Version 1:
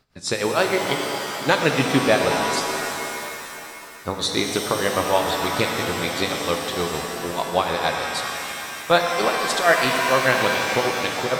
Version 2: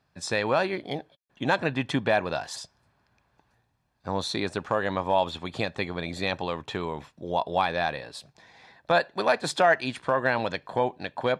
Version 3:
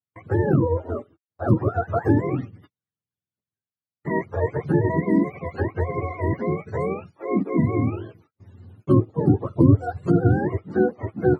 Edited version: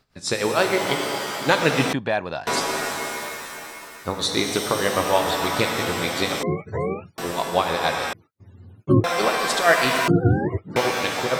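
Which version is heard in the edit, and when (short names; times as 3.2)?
1
1.93–2.47 from 2
6.43–7.18 from 3
8.13–9.04 from 3
10.08–10.76 from 3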